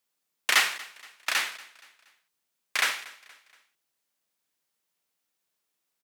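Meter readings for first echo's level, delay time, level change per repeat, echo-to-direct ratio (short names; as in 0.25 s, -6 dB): -20.5 dB, 0.236 s, -7.5 dB, -19.5 dB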